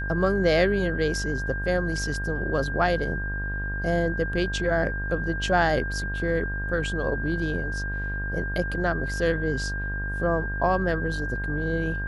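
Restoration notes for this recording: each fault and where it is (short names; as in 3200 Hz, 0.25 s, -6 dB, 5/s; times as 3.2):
buzz 50 Hz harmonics 29 -31 dBFS
tone 1600 Hz -31 dBFS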